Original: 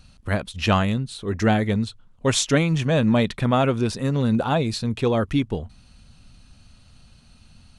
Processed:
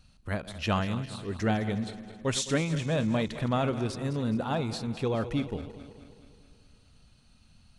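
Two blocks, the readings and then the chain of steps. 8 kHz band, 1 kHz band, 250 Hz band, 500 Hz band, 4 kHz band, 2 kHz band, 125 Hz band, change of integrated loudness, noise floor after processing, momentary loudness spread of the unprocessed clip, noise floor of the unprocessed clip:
-8.0 dB, -8.0 dB, -8.0 dB, -8.0 dB, -8.0 dB, -8.0 dB, -8.0 dB, -8.0 dB, -60 dBFS, 8 LU, -53 dBFS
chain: regenerating reverse delay 0.106 s, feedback 74%, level -13 dB; gain -8.5 dB

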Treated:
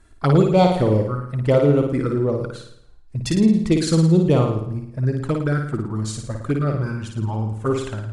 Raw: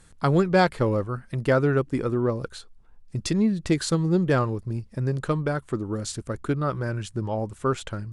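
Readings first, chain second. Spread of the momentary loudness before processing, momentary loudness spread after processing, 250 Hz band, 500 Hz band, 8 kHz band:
10 LU, 11 LU, +6.0 dB, +5.0 dB, +2.0 dB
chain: envelope flanger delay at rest 3.1 ms, full sweep at -18.5 dBFS; flutter echo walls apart 9.5 m, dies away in 0.72 s; mismatched tape noise reduction decoder only; gain +4.5 dB

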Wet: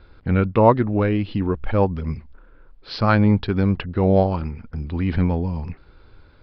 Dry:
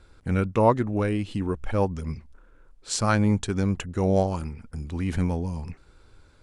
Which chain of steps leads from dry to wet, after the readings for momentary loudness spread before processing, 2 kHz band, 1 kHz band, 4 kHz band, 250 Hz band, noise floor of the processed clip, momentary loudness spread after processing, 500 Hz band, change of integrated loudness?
14 LU, +4.5 dB, +5.0 dB, +1.5 dB, +5.5 dB, -51 dBFS, 15 LU, +5.0 dB, +5.5 dB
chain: air absorption 110 m; downsampling 11025 Hz; gain +5.5 dB

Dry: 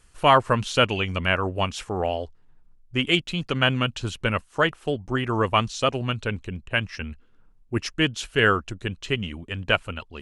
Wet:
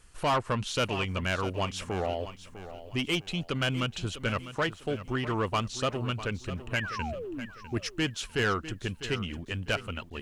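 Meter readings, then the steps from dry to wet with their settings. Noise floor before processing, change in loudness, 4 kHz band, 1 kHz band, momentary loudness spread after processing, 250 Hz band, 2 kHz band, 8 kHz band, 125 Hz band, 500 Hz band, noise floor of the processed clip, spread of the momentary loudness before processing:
-56 dBFS, -7.0 dB, -7.5 dB, -8.0 dB, 8 LU, -5.5 dB, -7.5 dB, -2.5 dB, -5.0 dB, -7.0 dB, -50 dBFS, 12 LU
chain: in parallel at +0.5 dB: compressor, threshold -35 dBFS, peak gain reduction 21.5 dB; on the sum: soft clip -15 dBFS, distortion -11 dB; painted sound fall, 6.74–7.46, 210–2300 Hz -31 dBFS; lo-fi delay 0.651 s, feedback 35%, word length 9-bit, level -13 dB; gain -6 dB

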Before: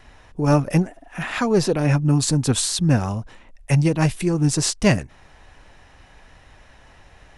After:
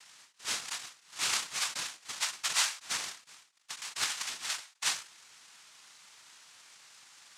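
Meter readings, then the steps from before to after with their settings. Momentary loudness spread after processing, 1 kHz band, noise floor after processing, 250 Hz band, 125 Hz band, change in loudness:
12 LU, -12.5 dB, -67 dBFS, under -40 dB, under -40 dB, -12.5 dB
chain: per-bin compression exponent 0.6; gate -25 dBFS, range -11 dB; Chebyshev high-pass 1400 Hz, order 5; noise vocoder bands 2; ending taper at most 150 dB/s; gain -4 dB

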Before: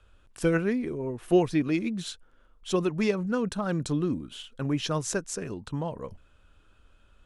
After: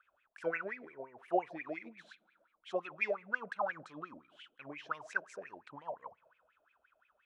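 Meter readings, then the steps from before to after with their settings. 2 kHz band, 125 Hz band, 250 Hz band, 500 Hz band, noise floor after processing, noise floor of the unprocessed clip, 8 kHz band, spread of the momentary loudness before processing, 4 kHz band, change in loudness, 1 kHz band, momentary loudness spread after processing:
-1.5 dB, -29.0 dB, -21.5 dB, -11.0 dB, -78 dBFS, -60 dBFS, under -25 dB, 12 LU, -18.5 dB, -11.0 dB, -3.0 dB, 18 LU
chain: spring tank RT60 1.3 s, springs 37/43 ms, chirp 75 ms, DRR 19.5 dB; wah 5.7 Hz 600–2400 Hz, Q 14; gain +9 dB

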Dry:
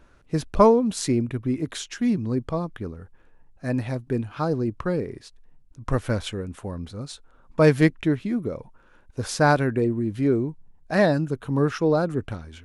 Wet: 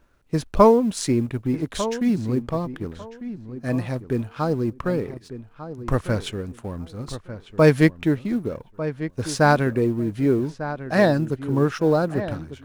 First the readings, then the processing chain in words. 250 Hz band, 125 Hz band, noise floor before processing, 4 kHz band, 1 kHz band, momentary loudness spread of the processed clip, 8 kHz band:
+1.5 dB, +1.5 dB, -55 dBFS, +1.0 dB, +2.0 dB, 16 LU, +0.5 dB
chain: G.711 law mismatch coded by A; darkening echo 1.198 s, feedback 20%, low-pass 2300 Hz, level -12 dB; gain +2 dB

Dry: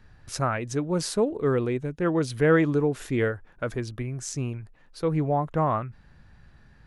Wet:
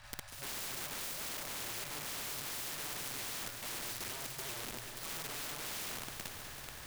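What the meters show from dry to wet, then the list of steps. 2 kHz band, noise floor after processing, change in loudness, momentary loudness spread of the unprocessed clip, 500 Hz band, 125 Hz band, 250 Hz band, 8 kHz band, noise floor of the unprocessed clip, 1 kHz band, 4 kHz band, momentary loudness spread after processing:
-10.0 dB, -49 dBFS, -13.5 dB, 12 LU, -25.5 dB, -25.0 dB, -26.5 dB, -1.0 dB, -55 dBFS, -16.0 dB, +0.5 dB, 4 LU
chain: switching dead time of 0.087 ms; FFT band-reject 160–530 Hz; reverse; compressor 12:1, threshold -39 dBFS, peak gain reduction 19 dB; reverse; Schroeder reverb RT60 0.61 s, combs from 30 ms, DRR -8 dB; wrapped overs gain 35 dB; on a send: multi-head echo 0.192 s, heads first and second, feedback 65%, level -15.5 dB; on the sum: spectral compressor 2:1; gain +5 dB

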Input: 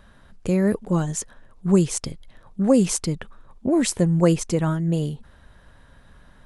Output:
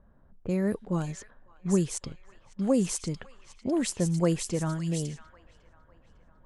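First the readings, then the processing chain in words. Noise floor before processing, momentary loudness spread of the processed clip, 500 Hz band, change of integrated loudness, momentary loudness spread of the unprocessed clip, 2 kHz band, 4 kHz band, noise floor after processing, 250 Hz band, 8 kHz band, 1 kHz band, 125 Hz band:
-52 dBFS, 15 LU, -7.5 dB, -7.5 dB, 15 LU, -7.0 dB, -6.5 dB, -59 dBFS, -7.5 dB, -6.5 dB, -7.5 dB, -7.5 dB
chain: thin delay 0.552 s, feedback 65%, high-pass 2400 Hz, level -3.5 dB; low-pass opened by the level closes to 770 Hz, open at -17.5 dBFS; gain -7.5 dB

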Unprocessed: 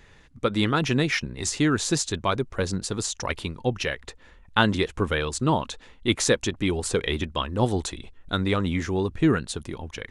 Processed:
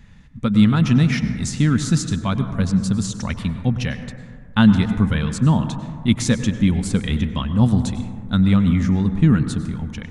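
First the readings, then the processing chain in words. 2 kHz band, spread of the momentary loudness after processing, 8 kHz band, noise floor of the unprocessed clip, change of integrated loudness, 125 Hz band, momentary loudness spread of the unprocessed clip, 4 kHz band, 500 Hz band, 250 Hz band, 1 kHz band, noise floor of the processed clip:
-1.5 dB, 10 LU, -1.5 dB, -53 dBFS, +6.5 dB, +11.0 dB, 8 LU, -1.5 dB, -5.5 dB, +9.5 dB, -1.5 dB, -39 dBFS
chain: resonant low shelf 280 Hz +9 dB, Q 3; plate-style reverb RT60 2 s, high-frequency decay 0.25×, pre-delay 85 ms, DRR 9 dB; gain -1.5 dB

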